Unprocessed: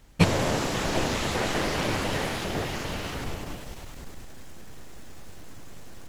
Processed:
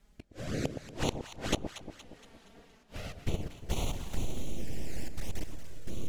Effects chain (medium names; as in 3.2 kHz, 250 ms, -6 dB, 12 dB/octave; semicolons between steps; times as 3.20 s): 3.12–3.69 s: gate -29 dBFS, range -14 dB; rotary cabinet horn 0.7 Hz; 5.08–5.65 s: level held to a coarse grid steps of 20 dB; trance gate "x..x.x.xxxxx" 69 bpm -12 dB; inverted gate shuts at -24 dBFS, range -36 dB; level rider gain up to 16 dB; touch-sensitive flanger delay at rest 5.2 ms, full sweep at -22 dBFS; echo whose repeats swap between lows and highs 117 ms, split 880 Hz, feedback 68%, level -8 dB; trim -5 dB